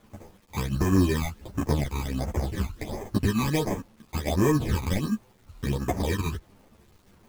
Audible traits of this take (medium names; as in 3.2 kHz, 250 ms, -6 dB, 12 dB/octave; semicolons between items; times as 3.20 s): aliases and images of a low sample rate 1.4 kHz, jitter 0%; phasing stages 12, 1.4 Hz, lowest notch 540–4100 Hz; a quantiser's noise floor 10-bit, dither none; a shimmering, thickened sound